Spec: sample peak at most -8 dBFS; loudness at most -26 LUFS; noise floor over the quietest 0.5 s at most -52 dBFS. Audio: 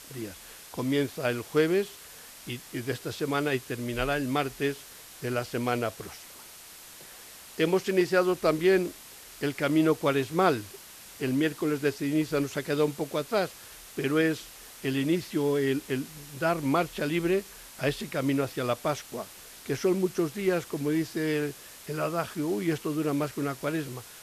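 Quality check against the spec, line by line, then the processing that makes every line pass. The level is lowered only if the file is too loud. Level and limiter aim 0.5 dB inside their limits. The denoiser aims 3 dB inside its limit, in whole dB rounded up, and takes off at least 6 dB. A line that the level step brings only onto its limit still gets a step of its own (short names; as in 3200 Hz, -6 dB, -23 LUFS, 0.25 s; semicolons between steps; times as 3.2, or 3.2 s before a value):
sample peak -9.5 dBFS: OK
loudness -28.5 LUFS: OK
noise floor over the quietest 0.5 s -48 dBFS: fail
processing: denoiser 7 dB, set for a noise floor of -48 dBFS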